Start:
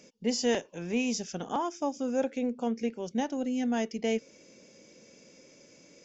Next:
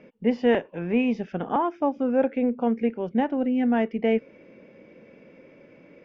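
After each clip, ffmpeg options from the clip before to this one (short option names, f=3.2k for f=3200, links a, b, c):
-af "lowpass=f=2.4k:w=0.5412,lowpass=f=2.4k:w=1.3066,volume=7dB"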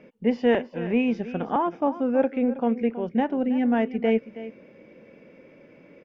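-af "aecho=1:1:322:0.188"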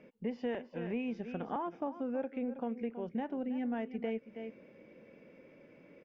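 -af "acompressor=threshold=-28dB:ratio=3,volume=-7dB"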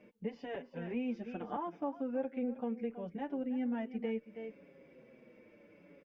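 -filter_complex "[0:a]asplit=2[a][b];[b]adelay=6.2,afreqshift=-0.73[c];[a][c]amix=inputs=2:normalize=1,volume=1dB"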